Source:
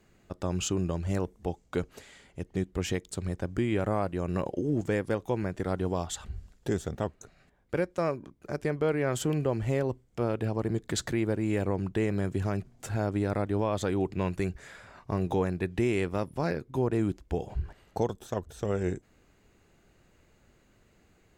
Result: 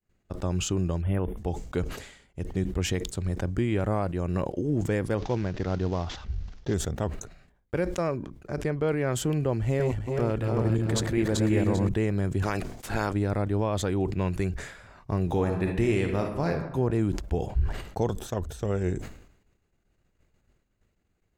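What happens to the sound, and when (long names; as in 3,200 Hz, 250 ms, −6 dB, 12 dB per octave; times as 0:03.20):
0:01.02–0:01.37: time-frequency box erased 3,600–9,000 Hz
0:05.18–0:06.74: variable-slope delta modulation 32 kbit/s
0:08.07–0:08.87: high-shelf EQ 7,800 Hz −6.5 dB
0:09.60–0:11.89: feedback delay that plays each chunk backwards 197 ms, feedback 61%, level −3 dB
0:12.42–0:13.12: ceiling on every frequency bin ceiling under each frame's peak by 19 dB
0:15.27–0:16.49: thrown reverb, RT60 1.1 s, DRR 3.5 dB
whole clip: low-shelf EQ 91 Hz +9.5 dB; downward expander −47 dBFS; level that may fall only so fast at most 78 dB per second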